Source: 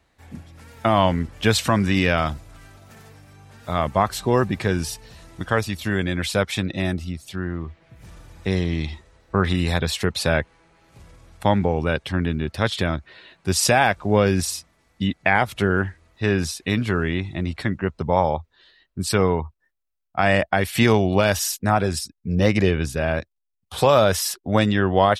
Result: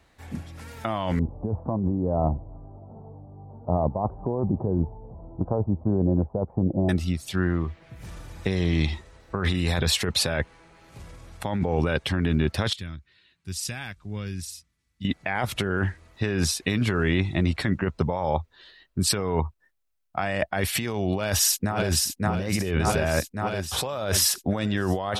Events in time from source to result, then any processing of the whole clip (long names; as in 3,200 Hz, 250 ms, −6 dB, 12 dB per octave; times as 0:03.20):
0:01.19–0:06.89: Butterworth low-pass 930 Hz 48 dB per octave
0:12.73–0:15.05: guitar amp tone stack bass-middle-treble 6-0-2
0:21.13–0:22.17: delay throw 570 ms, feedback 70%, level −7.5 dB
whole clip: compressor whose output falls as the input rises −24 dBFS, ratio −1